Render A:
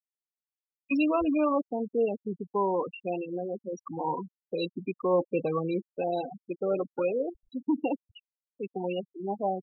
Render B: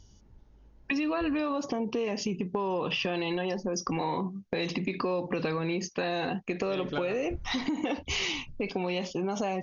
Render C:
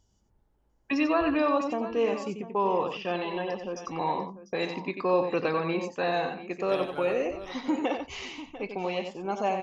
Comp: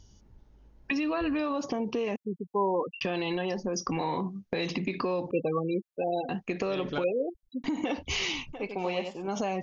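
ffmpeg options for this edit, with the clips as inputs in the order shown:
-filter_complex "[0:a]asplit=3[s0][s1][s2];[1:a]asplit=5[s3][s4][s5][s6][s7];[s3]atrim=end=2.162[s8];[s0]atrim=start=2.158:end=3.012[s9];[s4]atrim=start=3.008:end=5.312[s10];[s1]atrim=start=5.308:end=6.292[s11];[s5]atrim=start=6.288:end=7.042[s12];[s2]atrim=start=7.038:end=7.642[s13];[s6]atrim=start=7.638:end=8.532[s14];[2:a]atrim=start=8.528:end=9.282[s15];[s7]atrim=start=9.278[s16];[s8][s9]acrossfade=d=0.004:c1=hsin:c2=hsin[s17];[s17][s10]acrossfade=d=0.004:c1=hsin:c2=hsin[s18];[s18][s11]acrossfade=d=0.004:c1=hsin:c2=hsin[s19];[s19][s12]acrossfade=d=0.004:c1=hsin:c2=hsin[s20];[s20][s13]acrossfade=d=0.004:c1=hsin:c2=hsin[s21];[s21][s14]acrossfade=d=0.004:c1=hsin:c2=hsin[s22];[s22][s15]acrossfade=d=0.004:c1=hsin:c2=hsin[s23];[s23][s16]acrossfade=d=0.004:c1=hsin:c2=hsin"

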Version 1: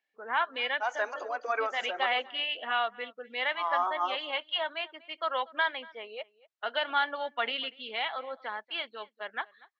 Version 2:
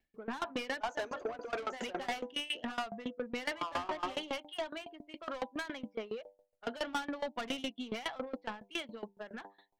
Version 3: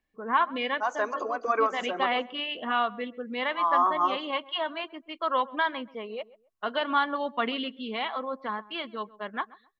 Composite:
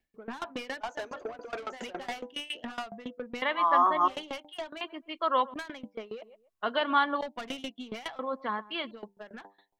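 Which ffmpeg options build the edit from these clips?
-filter_complex "[2:a]asplit=4[s0][s1][s2][s3];[1:a]asplit=5[s4][s5][s6][s7][s8];[s4]atrim=end=3.422[s9];[s0]atrim=start=3.418:end=4.082[s10];[s5]atrim=start=4.078:end=4.812[s11];[s1]atrim=start=4.808:end=5.542[s12];[s6]atrim=start=5.538:end=6.222[s13];[s2]atrim=start=6.218:end=7.212[s14];[s7]atrim=start=7.208:end=8.192[s15];[s3]atrim=start=8.188:end=8.912[s16];[s8]atrim=start=8.908[s17];[s9][s10]acrossfade=d=0.004:c1=hsin:c2=hsin[s18];[s18][s11]acrossfade=d=0.004:c1=hsin:c2=hsin[s19];[s19][s12]acrossfade=d=0.004:c1=hsin:c2=hsin[s20];[s20][s13]acrossfade=d=0.004:c1=hsin:c2=hsin[s21];[s21][s14]acrossfade=d=0.004:c1=hsin:c2=hsin[s22];[s22][s15]acrossfade=d=0.004:c1=hsin:c2=hsin[s23];[s23][s16]acrossfade=d=0.004:c1=hsin:c2=hsin[s24];[s24][s17]acrossfade=d=0.004:c1=hsin:c2=hsin"

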